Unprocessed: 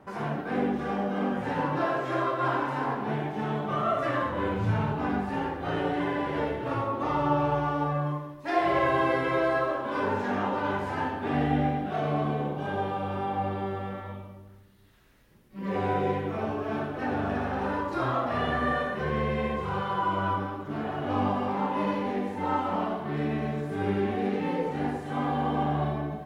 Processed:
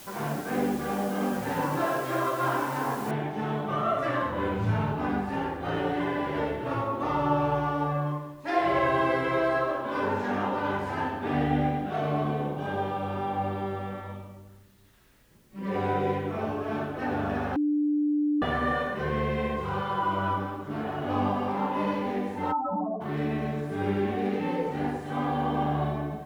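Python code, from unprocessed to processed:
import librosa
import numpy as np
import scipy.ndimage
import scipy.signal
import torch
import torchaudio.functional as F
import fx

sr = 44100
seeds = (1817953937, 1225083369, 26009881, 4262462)

y = fx.noise_floor_step(x, sr, seeds[0], at_s=3.11, before_db=-47, after_db=-69, tilt_db=0.0)
y = fx.spec_expand(y, sr, power=3.0, at=(22.51, 23.0), fade=0.02)
y = fx.edit(y, sr, fx.bleep(start_s=17.56, length_s=0.86, hz=296.0, db=-22.0), tone=tone)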